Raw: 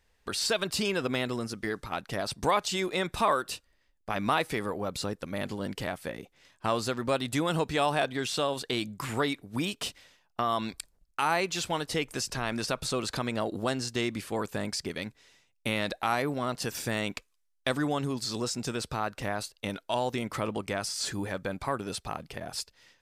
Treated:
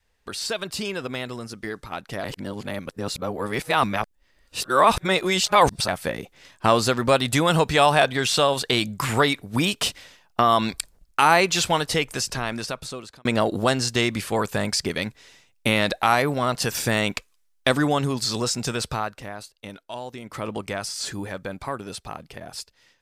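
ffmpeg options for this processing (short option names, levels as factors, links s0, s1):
-filter_complex "[0:a]asplit=6[s0][s1][s2][s3][s4][s5];[s0]atrim=end=2.242[s6];[s1]atrim=start=2.238:end=5.882,asetpts=PTS-STARTPTS,areverse[s7];[s2]atrim=start=5.878:end=13.25,asetpts=PTS-STARTPTS,afade=t=out:st=5.782:d=1.59[s8];[s3]atrim=start=13.25:end=19.22,asetpts=PTS-STARTPTS,afade=t=in:d=0.004:c=hsin,afade=t=out:st=5.63:d=0.34:silence=0.298538[s9];[s4]atrim=start=19.22:end=20.23,asetpts=PTS-STARTPTS,volume=0.299[s10];[s5]atrim=start=20.23,asetpts=PTS-STARTPTS,afade=t=in:d=0.34:silence=0.298538[s11];[s6][s7]acrossfade=d=0.004:c1=hsin:c2=hsin[s12];[s8][s9][s10][s11]concat=n=4:v=0:a=1[s13];[s12][s13]acrossfade=d=0.004:c1=hsin:c2=hsin,dynaudnorm=f=370:g=21:m=3.98,adynamicequalizer=threshold=0.0158:dfrequency=300:dqfactor=1.4:tfrequency=300:tqfactor=1.4:attack=5:release=100:ratio=0.375:range=3:mode=cutabove:tftype=bell"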